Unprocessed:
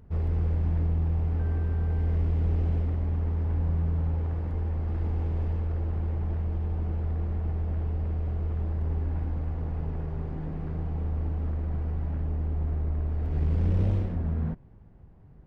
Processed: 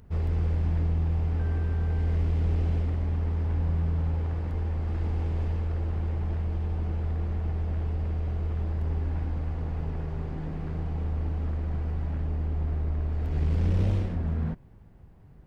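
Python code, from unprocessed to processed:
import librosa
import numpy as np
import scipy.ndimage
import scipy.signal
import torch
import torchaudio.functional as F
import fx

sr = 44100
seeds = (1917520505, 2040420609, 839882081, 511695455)

y = fx.high_shelf(x, sr, hz=2100.0, db=9.0)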